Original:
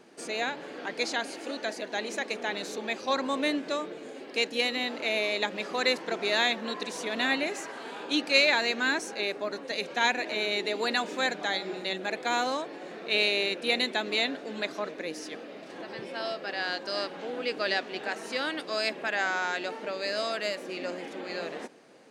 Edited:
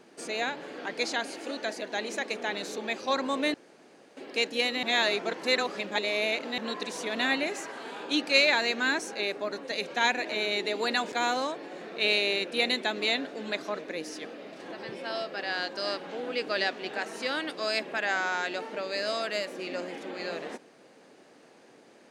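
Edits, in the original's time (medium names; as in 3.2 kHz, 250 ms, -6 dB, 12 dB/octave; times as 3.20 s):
3.54–4.17 s: room tone
4.83–6.58 s: reverse
11.12–12.22 s: delete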